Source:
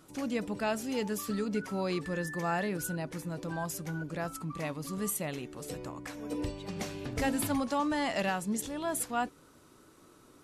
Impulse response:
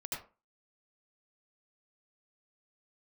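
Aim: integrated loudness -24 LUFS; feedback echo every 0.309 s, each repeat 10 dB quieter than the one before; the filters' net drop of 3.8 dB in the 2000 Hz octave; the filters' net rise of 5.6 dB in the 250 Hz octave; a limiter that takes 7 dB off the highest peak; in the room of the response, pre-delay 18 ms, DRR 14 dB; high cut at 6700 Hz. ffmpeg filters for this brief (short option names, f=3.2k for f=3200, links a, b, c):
-filter_complex "[0:a]lowpass=6.7k,equalizer=f=250:t=o:g=7,equalizer=f=2k:t=o:g=-5,alimiter=limit=-23.5dB:level=0:latency=1,aecho=1:1:309|618|927|1236:0.316|0.101|0.0324|0.0104,asplit=2[a][b];[1:a]atrim=start_sample=2205,adelay=18[c];[b][c]afir=irnorm=-1:irlink=0,volume=-14.5dB[d];[a][d]amix=inputs=2:normalize=0,volume=9dB"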